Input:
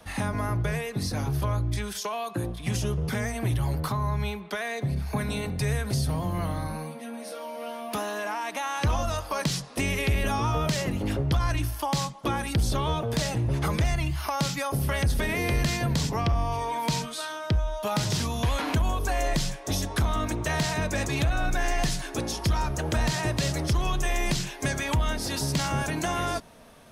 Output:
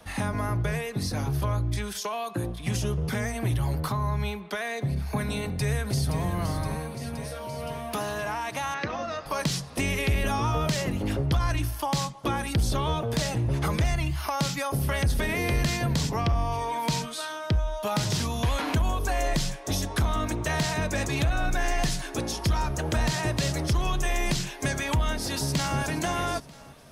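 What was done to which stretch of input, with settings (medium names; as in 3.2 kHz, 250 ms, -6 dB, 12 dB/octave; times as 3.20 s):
5.45–6.22 s: echo throw 520 ms, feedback 75%, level -8.5 dB
8.74–9.26 s: cabinet simulation 220–4800 Hz, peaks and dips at 930 Hz -8 dB, 1.9 kHz +5 dB, 3.2 kHz -8 dB
25.14–25.78 s: echo throw 470 ms, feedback 40%, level -14.5 dB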